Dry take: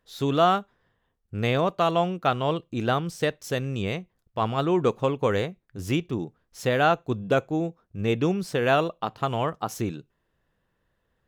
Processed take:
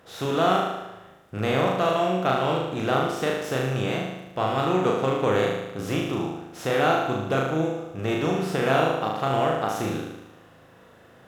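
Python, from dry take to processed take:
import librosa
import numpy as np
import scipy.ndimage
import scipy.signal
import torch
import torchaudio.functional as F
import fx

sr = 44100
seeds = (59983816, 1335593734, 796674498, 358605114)

y = fx.bin_compress(x, sr, power=0.6)
y = scipy.signal.sosfilt(scipy.signal.butter(2, 49.0, 'highpass', fs=sr, output='sos'), y)
y = fx.room_flutter(y, sr, wall_m=6.5, rt60_s=0.97)
y = F.gain(torch.from_numpy(y), -6.0).numpy()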